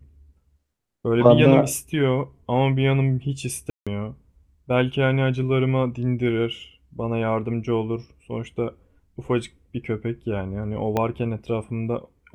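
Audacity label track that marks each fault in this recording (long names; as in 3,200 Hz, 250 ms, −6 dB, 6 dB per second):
3.700000	3.870000	drop-out 166 ms
10.970000	10.970000	click −10 dBFS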